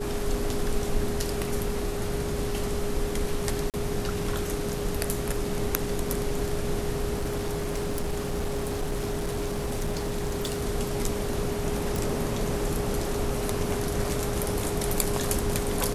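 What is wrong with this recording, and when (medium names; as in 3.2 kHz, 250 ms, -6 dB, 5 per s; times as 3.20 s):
whine 410 Hz -32 dBFS
3.70–3.74 s: dropout 38 ms
7.14–10.66 s: clipped -24 dBFS
11.96 s: pop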